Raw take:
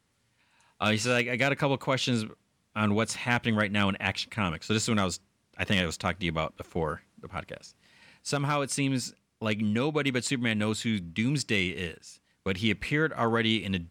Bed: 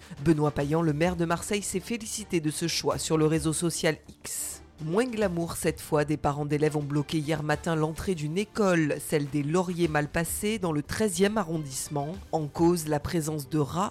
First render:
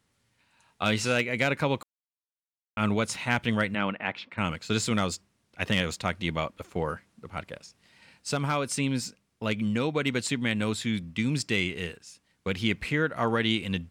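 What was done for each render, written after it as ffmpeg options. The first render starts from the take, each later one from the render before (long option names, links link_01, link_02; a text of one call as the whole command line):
ffmpeg -i in.wav -filter_complex "[0:a]asplit=3[link_01][link_02][link_03];[link_01]afade=type=out:start_time=3.74:duration=0.02[link_04];[link_02]highpass=200,lowpass=2300,afade=type=in:start_time=3.74:duration=0.02,afade=type=out:start_time=4.37:duration=0.02[link_05];[link_03]afade=type=in:start_time=4.37:duration=0.02[link_06];[link_04][link_05][link_06]amix=inputs=3:normalize=0,asplit=3[link_07][link_08][link_09];[link_07]atrim=end=1.83,asetpts=PTS-STARTPTS,afade=type=out:start_time=1.826:duration=0.004:curve=hsin[link_10];[link_08]atrim=start=1.83:end=2.77,asetpts=PTS-STARTPTS,volume=0[link_11];[link_09]atrim=start=2.77,asetpts=PTS-STARTPTS,afade=type=in:duration=0.004:curve=hsin[link_12];[link_10][link_11][link_12]concat=n=3:v=0:a=1" out.wav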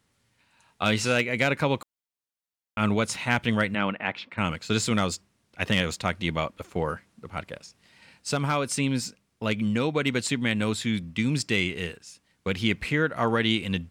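ffmpeg -i in.wav -af "volume=2dB" out.wav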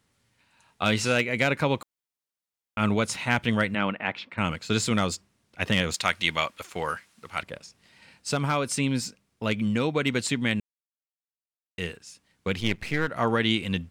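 ffmpeg -i in.wav -filter_complex "[0:a]asettb=1/sr,asplit=3[link_01][link_02][link_03];[link_01]atrim=end=5.944[link_04];[link_02]atrim=start=5.94:end=7.43,asetpts=PTS-STARTPTS,afade=type=in:duration=0.004:curve=qsin,afade=type=out:start_time=1.486:duration=0.004:curve=qsin,tiltshelf=frequency=780:gain=-8.5[link_05];[link_03]atrim=start=7.426[link_06];[link_04][link_05]acrossfade=duration=0.004:curve1=hsin:curve2=qsin[link_07];[link_07][link_06]acrossfade=duration=0.004:curve1=qsin:curve2=hsin,asettb=1/sr,asplit=3[link_08][link_09][link_10];[link_08]atrim=end=12.604[link_11];[link_09]atrim=start=12.6:end=13.08,asetpts=PTS-STARTPTS,afade=type=in:duration=0.004:curve=qsin,afade=type=out:start_time=0.476:duration=0.004:curve=qsin,aeval=exprs='if(lt(val(0),0),0.251*val(0),val(0))':channel_layout=same[link_12];[link_10]atrim=start=13.076[link_13];[link_11][link_12]acrossfade=duration=0.004:curve1=hsin:curve2=qsin[link_14];[link_14][link_13]acrossfade=duration=0.004:curve1=qsin:curve2=hsin,asplit=3[link_15][link_16][link_17];[link_15]atrim=end=10.6,asetpts=PTS-STARTPTS,afade=type=out:start_time=10.596:duration=0.004:curve=hsin[link_18];[link_16]atrim=start=10.6:end=11.78,asetpts=PTS-STARTPTS,volume=0[link_19];[link_17]atrim=start=11.78,asetpts=PTS-STARTPTS,afade=type=in:duration=0.004:curve=hsin[link_20];[link_18][link_19][link_20]concat=n=3:v=0:a=1" out.wav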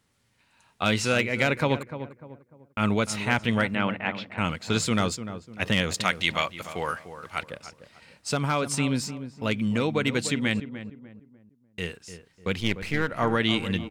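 ffmpeg -i in.wav -filter_complex "[0:a]asplit=2[link_01][link_02];[link_02]adelay=298,lowpass=frequency=1200:poles=1,volume=-10.5dB,asplit=2[link_03][link_04];[link_04]adelay=298,lowpass=frequency=1200:poles=1,volume=0.38,asplit=2[link_05][link_06];[link_06]adelay=298,lowpass=frequency=1200:poles=1,volume=0.38,asplit=2[link_07][link_08];[link_08]adelay=298,lowpass=frequency=1200:poles=1,volume=0.38[link_09];[link_01][link_03][link_05][link_07][link_09]amix=inputs=5:normalize=0" out.wav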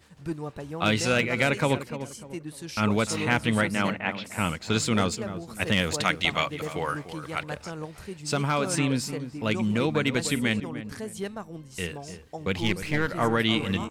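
ffmpeg -i in.wav -i bed.wav -filter_complex "[1:a]volume=-10dB[link_01];[0:a][link_01]amix=inputs=2:normalize=0" out.wav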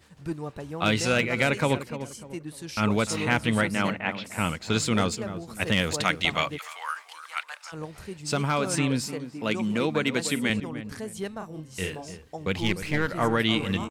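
ffmpeg -i in.wav -filter_complex "[0:a]asplit=3[link_01][link_02][link_03];[link_01]afade=type=out:start_time=6.57:duration=0.02[link_04];[link_02]highpass=frequency=960:width=0.5412,highpass=frequency=960:width=1.3066,afade=type=in:start_time=6.57:duration=0.02,afade=type=out:start_time=7.72:duration=0.02[link_05];[link_03]afade=type=in:start_time=7.72:duration=0.02[link_06];[link_04][link_05][link_06]amix=inputs=3:normalize=0,asettb=1/sr,asplit=3[link_07][link_08][link_09];[link_07]atrim=end=9.064[link_10];[link_08]atrim=start=9.06:end=10.5,asetpts=PTS-STARTPTS,afade=type=in:duration=0.004:curve=qsin,afade=type=out:start_time=1.436:duration=0.004:curve=qsin,highpass=160[link_11];[link_09]atrim=start=10.496[link_12];[link_10][link_11]acrossfade=duration=0.004:curve1=hsin:curve2=qsin[link_13];[link_13][link_12]acrossfade=duration=0.004:curve1=qsin:curve2=hsin,asplit=3[link_14][link_15][link_16];[link_14]afade=type=out:start_time=11.4:duration=0.02[link_17];[link_15]asplit=2[link_18][link_19];[link_19]adelay=32,volume=-4dB[link_20];[link_18][link_20]amix=inputs=2:normalize=0,afade=type=in:start_time=11.4:duration=0.02,afade=type=out:start_time=12.05:duration=0.02[link_21];[link_16]afade=type=in:start_time=12.05:duration=0.02[link_22];[link_17][link_21][link_22]amix=inputs=3:normalize=0" out.wav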